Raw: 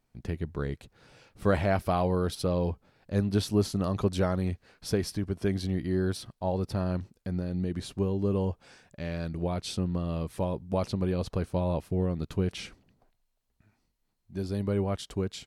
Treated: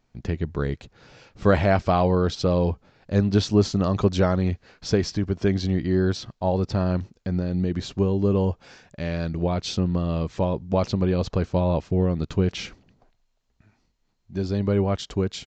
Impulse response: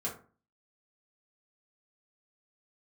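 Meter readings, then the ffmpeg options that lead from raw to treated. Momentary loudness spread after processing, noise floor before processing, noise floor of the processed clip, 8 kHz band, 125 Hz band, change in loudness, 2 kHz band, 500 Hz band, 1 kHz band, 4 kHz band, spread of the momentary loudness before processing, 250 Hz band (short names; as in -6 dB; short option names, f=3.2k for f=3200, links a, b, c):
9 LU, -77 dBFS, -70 dBFS, +3.5 dB, +6.5 dB, +6.5 dB, +6.5 dB, +6.5 dB, +6.5 dB, +6.5 dB, 9 LU, +6.5 dB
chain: -af "aresample=16000,aresample=44100,volume=6.5dB"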